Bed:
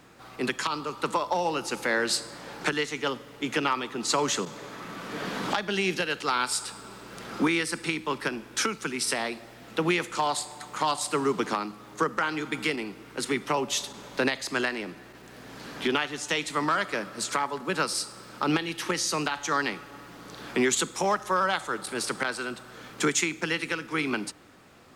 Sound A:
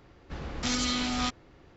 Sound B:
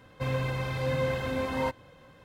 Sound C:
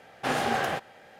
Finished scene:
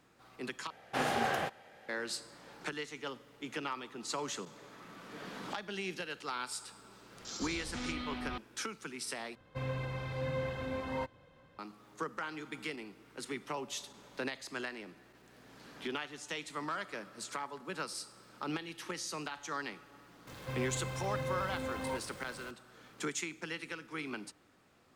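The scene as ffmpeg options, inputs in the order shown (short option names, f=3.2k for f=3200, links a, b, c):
-filter_complex "[2:a]asplit=2[a][b];[0:a]volume=-12.5dB[c];[1:a]acrossover=split=3500[d][e];[d]adelay=490[f];[f][e]amix=inputs=2:normalize=0[g];[a]highshelf=f=8.4k:g=-10.5[h];[b]aeval=exprs='val(0)+0.5*0.015*sgn(val(0))':c=same[i];[c]asplit=3[j][k][l];[j]atrim=end=0.704[m];[3:a]atrim=end=1.19,asetpts=PTS-STARTPTS,volume=-5dB[n];[k]atrim=start=1.886:end=9.354[o];[h]atrim=end=2.24,asetpts=PTS-STARTPTS,volume=-7.5dB[p];[l]atrim=start=11.586[q];[g]atrim=end=1.76,asetpts=PTS-STARTPTS,volume=-9.5dB,afade=t=in:d=0.004:c=hsin,afade=t=out:st=1.756:d=0.004:c=hsin,adelay=6620[r];[i]atrim=end=2.24,asetpts=PTS-STARTPTS,volume=-10dB,afade=t=in:d=0.004:c=hsin,afade=t=out:st=2.236:d=0.004:c=hsin,adelay=20270[s];[m][n]acrossfade=d=0.004:c1=hsin:c2=hsin[t];[t][o]acrossfade=d=0.004:c1=hsin:c2=hsin[u];[u][p]acrossfade=d=0.004:c1=hsin:c2=hsin[v];[v][q]acrossfade=d=0.004:c1=hsin:c2=hsin[w];[w][r][s]amix=inputs=3:normalize=0"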